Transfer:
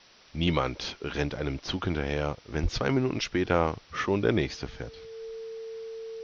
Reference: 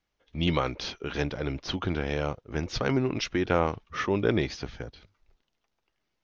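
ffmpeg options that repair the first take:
-filter_complex "[0:a]bandreject=f=450:w=30,asplit=3[a][b][c];[a]afade=t=out:st=2.62:d=0.02[d];[b]highpass=f=140:w=0.5412,highpass=f=140:w=1.3066,afade=t=in:st=2.62:d=0.02,afade=t=out:st=2.74:d=0.02[e];[c]afade=t=in:st=2.74:d=0.02[f];[d][e][f]amix=inputs=3:normalize=0,afwtdn=0.0025,asetnsamples=n=441:p=0,asendcmd='5.36 volume volume -6dB',volume=0dB"

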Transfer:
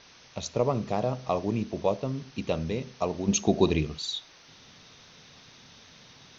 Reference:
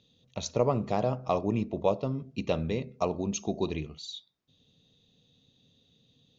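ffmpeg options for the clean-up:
-af "afwtdn=0.0035,asetnsamples=n=441:p=0,asendcmd='3.28 volume volume -8dB',volume=0dB"

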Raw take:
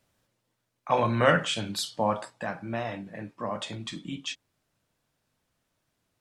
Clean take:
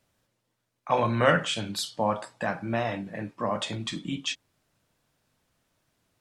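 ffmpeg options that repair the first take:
-af "asetnsamples=n=441:p=0,asendcmd='2.3 volume volume 4dB',volume=0dB"

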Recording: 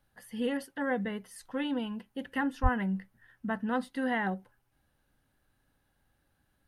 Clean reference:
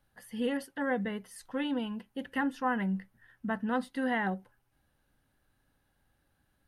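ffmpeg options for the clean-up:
-filter_complex "[0:a]asplit=3[a][b][c];[a]afade=t=out:st=2.62:d=0.02[d];[b]highpass=f=140:w=0.5412,highpass=f=140:w=1.3066,afade=t=in:st=2.62:d=0.02,afade=t=out:st=2.74:d=0.02[e];[c]afade=t=in:st=2.74:d=0.02[f];[d][e][f]amix=inputs=3:normalize=0"

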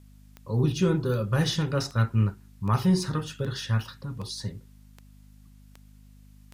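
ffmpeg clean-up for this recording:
-af "adeclick=t=4,bandreject=f=50.9:t=h:w=4,bandreject=f=101.8:t=h:w=4,bandreject=f=152.7:t=h:w=4,bandreject=f=203.6:t=h:w=4,bandreject=f=254.5:t=h:w=4,agate=range=-21dB:threshold=-44dB"

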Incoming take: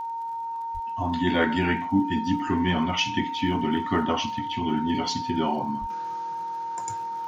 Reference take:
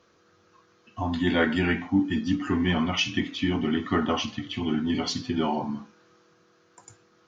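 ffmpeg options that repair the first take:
-filter_complex "[0:a]adeclick=t=4,bandreject=f=920:w=30,asplit=3[a][b][c];[a]afade=t=out:st=0.73:d=0.02[d];[b]highpass=f=140:w=0.5412,highpass=f=140:w=1.3066,afade=t=in:st=0.73:d=0.02,afade=t=out:st=0.85:d=0.02[e];[c]afade=t=in:st=0.85:d=0.02[f];[d][e][f]amix=inputs=3:normalize=0,asplit=3[g][h][i];[g]afade=t=out:st=5.8:d=0.02[j];[h]highpass=f=140:w=0.5412,highpass=f=140:w=1.3066,afade=t=in:st=5.8:d=0.02,afade=t=out:st=5.92:d=0.02[k];[i]afade=t=in:st=5.92:d=0.02[l];[j][k][l]amix=inputs=3:normalize=0,asetnsamples=n=441:p=0,asendcmd='5.9 volume volume -11.5dB',volume=0dB"

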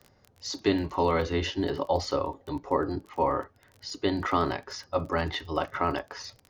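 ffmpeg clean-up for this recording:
-af "adeclick=t=4"

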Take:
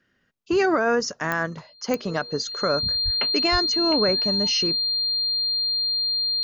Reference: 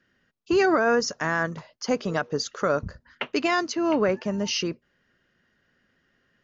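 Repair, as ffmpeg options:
-filter_complex "[0:a]adeclick=t=4,bandreject=f=4.2k:w=30,asplit=3[a][b][c];[a]afade=t=out:st=3.04:d=0.02[d];[b]highpass=f=140:w=0.5412,highpass=f=140:w=1.3066,afade=t=in:st=3.04:d=0.02,afade=t=out:st=3.16:d=0.02[e];[c]afade=t=in:st=3.16:d=0.02[f];[d][e][f]amix=inputs=3:normalize=0,asplit=3[g][h][i];[g]afade=t=out:st=3.51:d=0.02[j];[h]highpass=f=140:w=0.5412,highpass=f=140:w=1.3066,afade=t=in:st=3.51:d=0.02,afade=t=out:st=3.63:d=0.02[k];[i]afade=t=in:st=3.63:d=0.02[l];[j][k][l]amix=inputs=3:normalize=0"

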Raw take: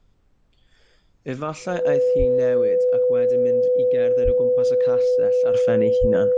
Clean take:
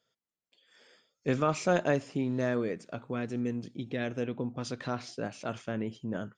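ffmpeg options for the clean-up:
-filter_complex "[0:a]bandreject=f=500:w=30,asplit=3[a][b][c];[a]afade=t=out:st=2.18:d=0.02[d];[b]highpass=f=140:w=0.5412,highpass=f=140:w=1.3066,afade=t=in:st=2.18:d=0.02,afade=t=out:st=2.3:d=0.02[e];[c]afade=t=in:st=2.3:d=0.02[f];[d][e][f]amix=inputs=3:normalize=0,asplit=3[g][h][i];[g]afade=t=out:st=4.24:d=0.02[j];[h]highpass=f=140:w=0.5412,highpass=f=140:w=1.3066,afade=t=in:st=4.24:d=0.02,afade=t=out:st=4.36:d=0.02[k];[i]afade=t=in:st=4.36:d=0.02[l];[j][k][l]amix=inputs=3:normalize=0,asplit=3[m][n][o];[m]afade=t=out:st=6:d=0.02[p];[n]highpass=f=140:w=0.5412,highpass=f=140:w=1.3066,afade=t=in:st=6:d=0.02,afade=t=out:st=6.12:d=0.02[q];[o]afade=t=in:st=6.12:d=0.02[r];[p][q][r]amix=inputs=3:normalize=0,agate=range=-21dB:threshold=-51dB,asetnsamples=n=441:p=0,asendcmd='5.54 volume volume -9.5dB',volume=0dB"

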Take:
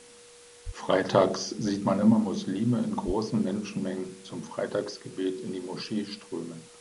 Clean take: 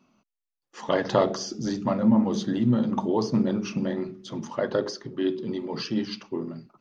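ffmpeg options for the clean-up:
-filter_complex "[0:a]bandreject=f=480:w=30,asplit=3[a][b][c];[a]afade=t=out:st=0.65:d=0.02[d];[b]highpass=f=140:w=0.5412,highpass=f=140:w=1.3066,afade=t=in:st=0.65:d=0.02,afade=t=out:st=0.77:d=0.02[e];[c]afade=t=in:st=0.77:d=0.02[f];[d][e][f]amix=inputs=3:normalize=0,asplit=3[g][h][i];[g]afade=t=out:st=3.06:d=0.02[j];[h]highpass=f=140:w=0.5412,highpass=f=140:w=1.3066,afade=t=in:st=3.06:d=0.02,afade=t=out:st=3.18:d=0.02[k];[i]afade=t=in:st=3.18:d=0.02[l];[j][k][l]amix=inputs=3:normalize=0,afwtdn=0.0028,asetnsamples=n=441:p=0,asendcmd='2.13 volume volume 4dB',volume=0dB"

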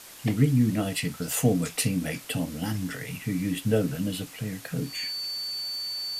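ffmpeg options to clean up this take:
-af "adeclick=t=4,bandreject=f=4.5k:w=30,afwtdn=0.0056"

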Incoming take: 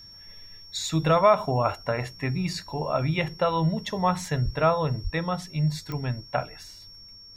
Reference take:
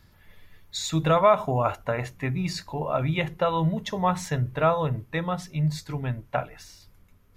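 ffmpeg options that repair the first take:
-filter_complex "[0:a]adeclick=t=4,bandreject=f=5.5k:w=30,asplit=3[a][b][c];[a]afade=t=out:st=4.44:d=0.02[d];[b]highpass=f=140:w=0.5412,highpass=f=140:w=1.3066,afade=t=in:st=4.44:d=0.02,afade=t=out:st=4.56:d=0.02[e];[c]afade=t=in:st=4.56:d=0.02[f];[d][e][f]amix=inputs=3:normalize=0,asplit=3[g][h][i];[g]afade=t=out:st=5.03:d=0.02[j];[h]highpass=f=140:w=0.5412,highpass=f=140:w=1.3066,afade=t=in:st=5.03:d=0.02,afade=t=out:st=5.15:d=0.02[k];[i]afade=t=in:st=5.15:d=0.02[l];[j][k][l]amix=inputs=3:normalize=0"

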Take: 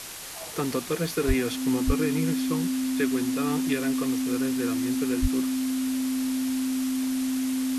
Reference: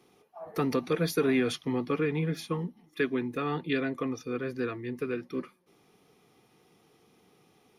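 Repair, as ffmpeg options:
-filter_complex "[0:a]bandreject=f=260:w=30,asplit=3[a][b][c];[a]afade=t=out:st=1.27:d=0.02[d];[b]highpass=f=140:w=0.5412,highpass=f=140:w=1.3066,afade=t=in:st=1.27:d=0.02,afade=t=out:st=1.39:d=0.02[e];[c]afade=t=in:st=1.39:d=0.02[f];[d][e][f]amix=inputs=3:normalize=0,asplit=3[g][h][i];[g]afade=t=out:st=1.86:d=0.02[j];[h]highpass=f=140:w=0.5412,highpass=f=140:w=1.3066,afade=t=in:st=1.86:d=0.02,afade=t=out:st=1.98:d=0.02[k];[i]afade=t=in:st=1.98:d=0.02[l];[j][k][l]amix=inputs=3:normalize=0,asplit=3[m][n][o];[m]afade=t=out:st=5.21:d=0.02[p];[n]highpass=f=140:w=0.5412,highpass=f=140:w=1.3066,afade=t=in:st=5.21:d=0.02,afade=t=out:st=5.33:d=0.02[q];[o]afade=t=in:st=5.33:d=0.02[r];[p][q][r]amix=inputs=3:normalize=0,afftdn=nr=30:nf=-34"

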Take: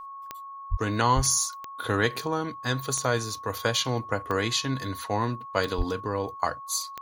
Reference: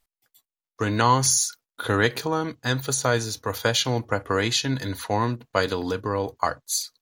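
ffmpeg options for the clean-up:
-filter_complex "[0:a]adeclick=t=4,bandreject=f=1.1k:w=30,asplit=3[a][b][c];[a]afade=t=out:st=0.7:d=0.02[d];[b]highpass=f=140:w=0.5412,highpass=f=140:w=1.3066,afade=t=in:st=0.7:d=0.02,afade=t=out:st=0.82:d=0.02[e];[c]afade=t=in:st=0.82:d=0.02[f];[d][e][f]amix=inputs=3:normalize=0,asplit=3[g][h][i];[g]afade=t=out:st=1.15:d=0.02[j];[h]highpass=f=140:w=0.5412,highpass=f=140:w=1.3066,afade=t=in:st=1.15:d=0.02,afade=t=out:st=1.27:d=0.02[k];[i]afade=t=in:st=1.27:d=0.02[l];[j][k][l]amix=inputs=3:normalize=0,asplit=3[m][n][o];[m]afade=t=out:st=5.77:d=0.02[p];[n]highpass=f=140:w=0.5412,highpass=f=140:w=1.3066,afade=t=in:st=5.77:d=0.02,afade=t=out:st=5.89:d=0.02[q];[o]afade=t=in:st=5.89:d=0.02[r];[p][q][r]amix=inputs=3:normalize=0,asetnsamples=n=441:p=0,asendcmd='0.76 volume volume 3.5dB',volume=0dB"

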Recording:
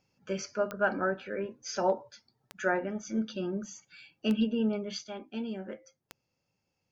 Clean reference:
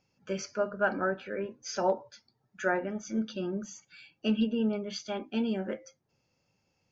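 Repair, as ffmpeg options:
-af "adeclick=t=4,asetnsamples=n=441:p=0,asendcmd='5.04 volume volume 6dB',volume=0dB"

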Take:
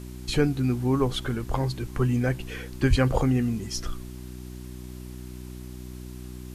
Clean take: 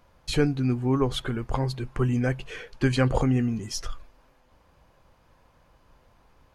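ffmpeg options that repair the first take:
-filter_complex "[0:a]bandreject=f=62:t=h:w=4,bandreject=f=124:t=h:w=4,bandreject=f=186:t=h:w=4,bandreject=f=248:t=h:w=4,bandreject=f=310:t=h:w=4,bandreject=f=372:t=h:w=4,asplit=3[a][b][c];[a]afade=t=out:st=2.89:d=0.02[d];[b]highpass=f=140:w=0.5412,highpass=f=140:w=1.3066,afade=t=in:st=2.89:d=0.02,afade=t=out:st=3.01:d=0.02[e];[c]afade=t=in:st=3.01:d=0.02[f];[d][e][f]amix=inputs=3:normalize=0,afwtdn=0.0025"

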